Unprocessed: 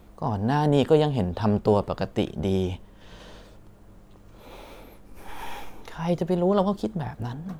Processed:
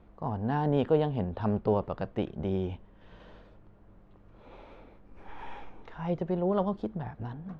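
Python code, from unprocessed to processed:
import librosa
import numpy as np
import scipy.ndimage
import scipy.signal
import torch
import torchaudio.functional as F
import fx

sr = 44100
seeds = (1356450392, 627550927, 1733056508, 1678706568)

y = scipy.signal.sosfilt(scipy.signal.butter(2, 2400.0, 'lowpass', fs=sr, output='sos'), x)
y = F.gain(torch.from_numpy(y), -6.0).numpy()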